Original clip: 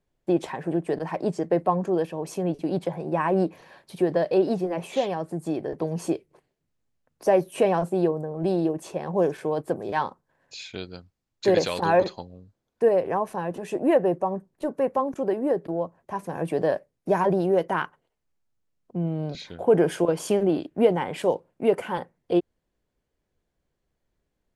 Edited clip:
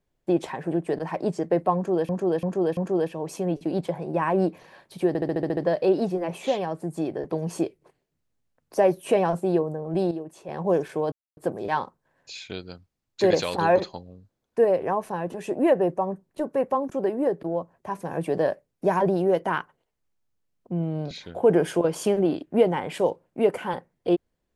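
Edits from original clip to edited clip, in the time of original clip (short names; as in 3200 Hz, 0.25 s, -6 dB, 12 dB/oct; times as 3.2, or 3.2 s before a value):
1.75–2.09 loop, 4 plays
4.06 stutter 0.07 s, 8 plays
8.6–8.98 gain -9 dB
9.61 insert silence 0.25 s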